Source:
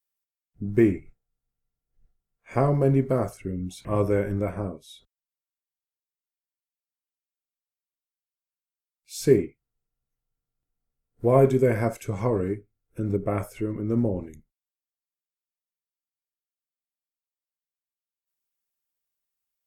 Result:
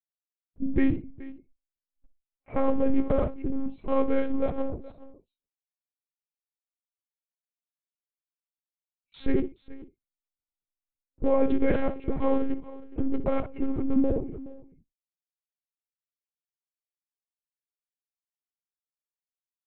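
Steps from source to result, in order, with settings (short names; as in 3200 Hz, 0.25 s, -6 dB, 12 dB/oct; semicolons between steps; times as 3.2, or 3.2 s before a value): Wiener smoothing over 25 samples; gate with hold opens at -54 dBFS; in parallel at +1 dB: compressor, threshold -32 dBFS, peak gain reduction 18.5 dB; on the sum: limiter -13 dBFS, peak gain reduction 7.5 dB; on a send: tapped delay 65/423 ms -15/-18 dB; on the sum: monotone LPC vocoder at 8 kHz 270 Hz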